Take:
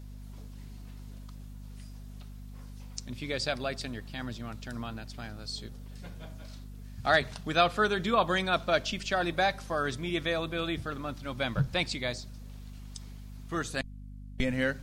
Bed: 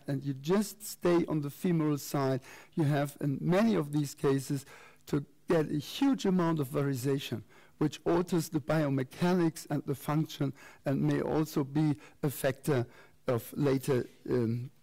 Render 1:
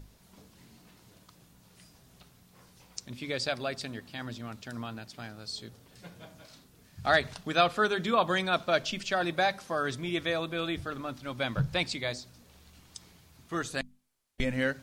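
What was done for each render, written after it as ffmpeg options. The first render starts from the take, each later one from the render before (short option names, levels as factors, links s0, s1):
-af "bandreject=f=50:t=h:w=6,bandreject=f=100:t=h:w=6,bandreject=f=150:t=h:w=6,bandreject=f=200:t=h:w=6,bandreject=f=250:t=h:w=6"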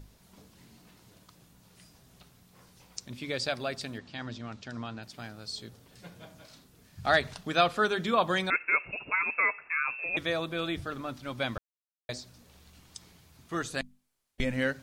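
-filter_complex "[0:a]asettb=1/sr,asplit=3[s0][s1][s2];[s0]atrim=end=3.984[s3];[s1]atrim=start=3.98:end=5.03,asetpts=PTS-STARTPTS,afade=t=in:d=0.004:c=qsin,afade=t=out:st=1.046:d=0.004:c=qsin,lowpass=f=6800:w=0.5412,lowpass=f=6800:w=1.3066[s4];[s2]atrim=start=5.026[s5];[s3][s4]acrossfade=d=0.004:c1=hsin:c2=qsin[s6];[s6][s5]acrossfade=d=0.004:c1=qsin:c2=hsin,asettb=1/sr,asplit=3[s7][s8][s9];[s7]atrim=end=8.504[s10];[s8]atrim=start=8.5:end=10.17,asetpts=PTS-STARTPTS,afade=t=in:d=0.004:c=qsin,afade=t=out:st=1.666:d=0.004:c=qsin,lowpass=f=2400:t=q:w=0.5098,lowpass=f=2400:t=q:w=0.6013,lowpass=f=2400:t=q:w=0.9,lowpass=f=2400:t=q:w=2.563,afreqshift=-2800[s11];[s9]atrim=start=10.166[s12];[s10][s11]acrossfade=d=0.004:c1=hsin:c2=qsin[s13];[s13][s12]acrossfade=d=0.004:c1=qsin:c2=hsin,asplit=3[s14][s15][s16];[s14]atrim=end=11.58,asetpts=PTS-STARTPTS,afade=t=out:st=11.576:d=0.004:c=hsin[s17];[s15]atrim=start=11.58:end=12.09,asetpts=PTS-STARTPTS,volume=0[s18];[s16]atrim=start=12.09,asetpts=PTS-STARTPTS,afade=t=in:d=0.004:c=hsin[s19];[s17][s18][s19]concat=n=3:v=0:a=1"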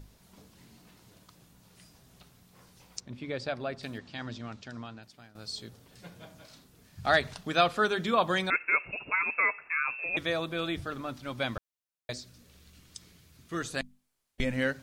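-filter_complex "[0:a]asettb=1/sr,asplit=3[s0][s1][s2];[s0]atrim=end=3.004[s3];[s1]atrim=start=3:end=3.83,asetpts=PTS-STARTPTS,afade=t=in:d=0.004:c=qsin,afade=t=out:st=0.826:d=0.004:c=qsin,lowpass=f=1500:p=1[s4];[s2]atrim=start=3.826[s5];[s3][s4]acrossfade=d=0.004:c1=hsin:c2=qsin[s6];[s6][s5]acrossfade=d=0.004:c1=qsin:c2=hsin,asettb=1/sr,asplit=3[s7][s8][s9];[s7]atrim=end=12.134[s10];[s8]atrim=start=12.13:end=13.62,asetpts=PTS-STARTPTS,afade=t=in:d=0.004:c=qsin,afade=t=out:st=1.486:d=0.004:c=qsin,equalizer=f=840:t=o:w=0.77:g=-9[s11];[s9]atrim=start=13.616[s12];[s10][s11]acrossfade=d=0.004:c1=hsin:c2=qsin[s13];[s13][s12]acrossfade=d=0.004:c1=qsin:c2=hsin,asplit=2[s14][s15];[s14]atrim=end=5.35,asetpts=PTS-STARTPTS,afade=t=out:st=4.46:d=0.89:silence=0.16788[s16];[s15]atrim=start=5.35,asetpts=PTS-STARTPTS,afade=t=in:d=0.004:c=hsin:silence=0.16788[s17];[s16][s17]concat=n=2:v=0:a=1"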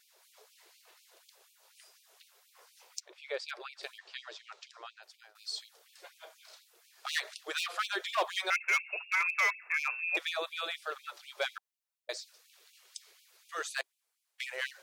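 -af "volume=15,asoftclip=hard,volume=0.0668,afftfilt=real='re*gte(b*sr/1024,340*pow(2300/340,0.5+0.5*sin(2*PI*4.1*pts/sr)))':imag='im*gte(b*sr/1024,340*pow(2300/340,0.5+0.5*sin(2*PI*4.1*pts/sr)))':win_size=1024:overlap=0.75"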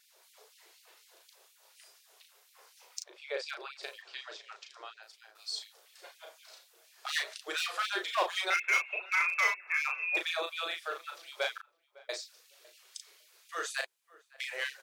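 -filter_complex "[0:a]asplit=2[s0][s1];[s1]adelay=36,volume=0.562[s2];[s0][s2]amix=inputs=2:normalize=0,asplit=2[s3][s4];[s4]adelay=555,lowpass=f=1300:p=1,volume=0.1,asplit=2[s5][s6];[s6]adelay=555,lowpass=f=1300:p=1,volume=0.17[s7];[s3][s5][s7]amix=inputs=3:normalize=0"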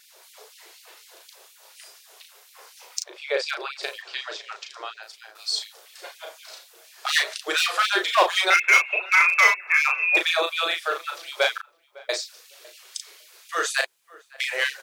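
-af "volume=3.76"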